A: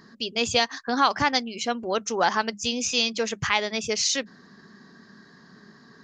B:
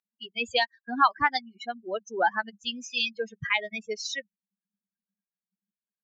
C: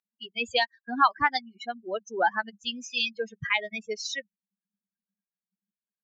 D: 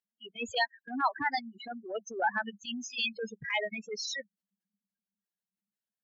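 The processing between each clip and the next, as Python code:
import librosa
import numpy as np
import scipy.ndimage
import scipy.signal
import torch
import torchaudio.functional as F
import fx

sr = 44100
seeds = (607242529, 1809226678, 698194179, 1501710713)

y1 = fx.bin_expand(x, sr, power=3.0)
y1 = scipy.signal.sosfilt(scipy.signal.butter(2, 3000.0, 'lowpass', fs=sr, output='sos'), y1)
y1 = fx.low_shelf(y1, sr, hz=400.0, db=-12.0)
y1 = y1 * 10.0 ** (5.5 / 20.0)
y2 = y1
y3 = fx.spec_gate(y2, sr, threshold_db=-15, keep='strong')
y3 = fx.notch_comb(y3, sr, f0_hz=1200.0)
y3 = fx.transient(y3, sr, attack_db=-10, sustain_db=4)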